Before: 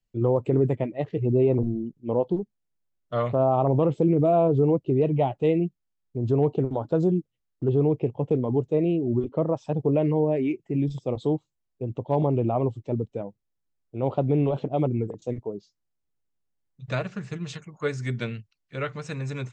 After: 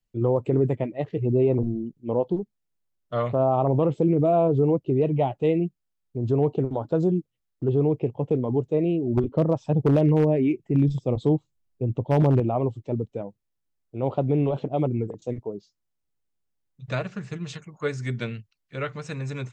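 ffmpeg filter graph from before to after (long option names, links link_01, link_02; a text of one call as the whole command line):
ffmpeg -i in.wav -filter_complex "[0:a]asettb=1/sr,asplit=3[link_01][link_02][link_03];[link_01]atrim=end=9.174[link_04];[link_02]atrim=start=9.17:end=12.4,asetpts=PTS-STARTPTS,afade=type=in:duration=0.004:curve=qsin,afade=type=out:start_time=3.226:duration=0.004:curve=qsin,lowshelf=frequency=250:gain=8,aeval=exprs='0.237*(abs(mod(val(0)/0.237+3,4)-2)-1)':channel_layout=same[link_05];[link_03]atrim=start=12.396[link_06];[link_04][link_05]acrossfade=duration=0.004:curve1=hsin:curve2=qsin[link_07];[link_07][link_06]acrossfade=duration=0.004:curve1=qsin:curve2=hsin" out.wav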